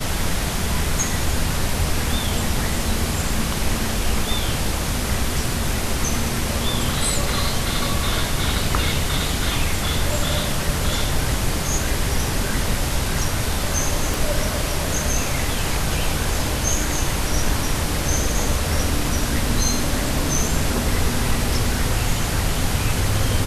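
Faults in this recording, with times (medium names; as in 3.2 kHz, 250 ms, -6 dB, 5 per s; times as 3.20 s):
14.14 s: pop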